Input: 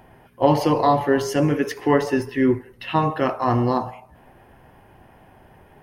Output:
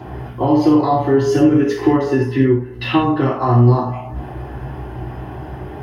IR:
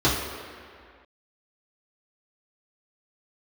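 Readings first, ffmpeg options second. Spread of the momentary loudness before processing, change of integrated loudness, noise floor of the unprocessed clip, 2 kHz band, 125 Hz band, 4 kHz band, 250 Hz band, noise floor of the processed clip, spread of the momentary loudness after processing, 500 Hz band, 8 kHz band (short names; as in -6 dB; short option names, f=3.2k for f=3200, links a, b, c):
6 LU, +5.5 dB, -52 dBFS, +1.5 dB, +9.5 dB, +3.0 dB, +7.5 dB, -32 dBFS, 17 LU, +3.5 dB, n/a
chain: -filter_complex "[0:a]acompressor=threshold=-34dB:ratio=5[a];[1:a]atrim=start_sample=2205,afade=t=out:st=0.16:d=0.01,atrim=end_sample=7497[b];[a][b]afir=irnorm=-1:irlink=0,volume=-1dB"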